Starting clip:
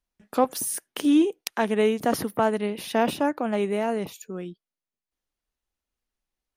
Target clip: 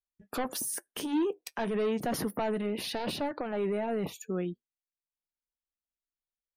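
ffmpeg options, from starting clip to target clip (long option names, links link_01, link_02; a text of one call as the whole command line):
ffmpeg -i in.wav -filter_complex "[0:a]asoftclip=type=tanh:threshold=-20dB,asettb=1/sr,asplit=3[link_01][link_02][link_03];[link_01]atrim=end=2.824[link_04];[link_02]atrim=start=2.82:end=3.52,asetpts=PTS-STARTPTS,afade=type=in:duration=0.004:curve=qsin,afade=type=out:start_time=0.696:duration=0.004:curve=qsin,equalizer=frequency=4400:width_type=o:width=0.42:gain=9.5[link_05];[link_03]atrim=start=3.516[link_06];[link_04][link_05]acrossfade=duration=0.004:curve1=hsin:curve2=qsin[link_07];[link_07][link_06]acrossfade=duration=0.004:curve1=qsin:curve2=hsin,alimiter=level_in=2.5dB:limit=-24dB:level=0:latency=1:release=12,volume=-2.5dB,flanger=delay=1.4:depth=5.7:regen=-71:speed=0.31:shape=triangular,afftdn=noise_reduction=20:noise_floor=-59,adynamicequalizer=threshold=0.00178:dfrequency=2900:dqfactor=0.7:tfrequency=2900:tqfactor=0.7:attack=5:release=100:ratio=0.375:range=2:mode=cutabove:tftype=highshelf,volume=6dB" out.wav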